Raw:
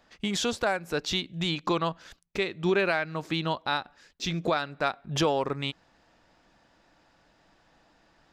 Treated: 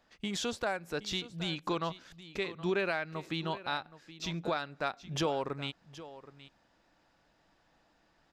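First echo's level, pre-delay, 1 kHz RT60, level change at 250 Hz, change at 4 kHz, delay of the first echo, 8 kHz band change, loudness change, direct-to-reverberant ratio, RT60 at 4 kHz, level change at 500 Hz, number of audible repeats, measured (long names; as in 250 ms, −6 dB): −16.0 dB, no reverb audible, no reverb audible, −6.5 dB, −6.5 dB, 771 ms, −6.5 dB, −6.5 dB, no reverb audible, no reverb audible, −6.5 dB, 1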